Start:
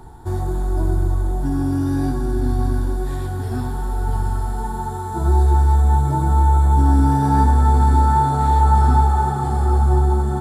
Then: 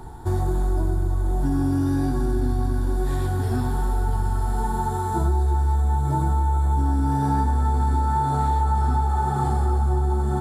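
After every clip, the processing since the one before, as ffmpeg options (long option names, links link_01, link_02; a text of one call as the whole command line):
ffmpeg -i in.wav -af "acompressor=threshold=-20dB:ratio=6,volume=2dB" out.wav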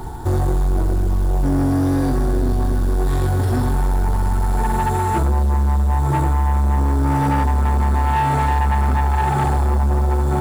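ffmpeg -i in.wav -af "acrusher=bits=6:mode=log:mix=0:aa=0.000001,asoftclip=type=tanh:threshold=-22.5dB,volume=9dB" out.wav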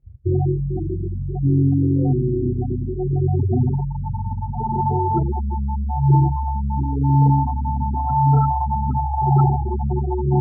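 ffmpeg -i in.wav -af "afftfilt=real='re*gte(hypot(re,im),0.282)':imag='im*gte(hypot(re,im),0.282)':win_size=1024:overlap=0.75,highpass=130,equalizer=frequency=130:width_type=q:width=4:gain=9,equalizer=frequency=190:width_type=q:width=4:gain=-5,equalizer=frequency=280:width_type=q:width=4:gain=-5,equalizer=frequency=660:width_type=q:width=4:gain=-4,equalizer=frequency=1000:width_type=q:width=4:gain=-7,equalizer=frequency=2200:width_type=q:width=4:gain=6,lowpass=frequency=6600:width=0.5412,lowpass=frequency=6600:width=1.3066,volume=4dB" out.wav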